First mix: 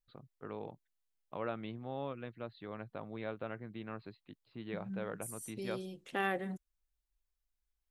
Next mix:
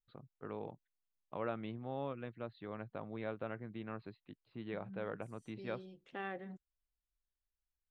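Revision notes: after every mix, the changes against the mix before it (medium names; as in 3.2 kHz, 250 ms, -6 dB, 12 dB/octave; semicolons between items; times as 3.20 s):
second voice -8.0 dB; master: add distance through air 150 m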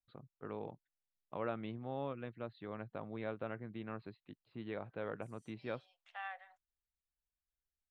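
second voice: add elliptic high-pass 690 Hz, stop band 50 dB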